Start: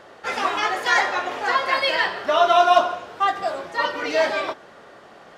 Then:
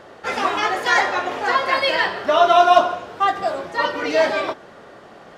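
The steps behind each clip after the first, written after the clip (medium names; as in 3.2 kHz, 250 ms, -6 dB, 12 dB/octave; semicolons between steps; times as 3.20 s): bass shelf 490 Hz +5.5 dB; trim +1 dB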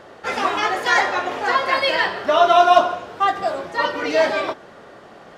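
no audible change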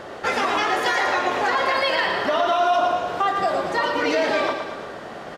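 peak limiter -13.5 dBFS, peak gain reduction 12 dB; compression 2:1, threshold -30 dBFS, peak gain reduction 7 dB; feedback delay 114 ms, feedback 56%, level -7 dB; trim +6.5 dB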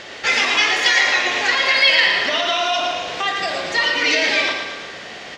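high-order bell 3.7 kHz +15.5 dB 2.3 oct; on a send at -7 dB: reverberation RT60 0.70 s, pre-delay 37 ms; on the sum: trim -4 dB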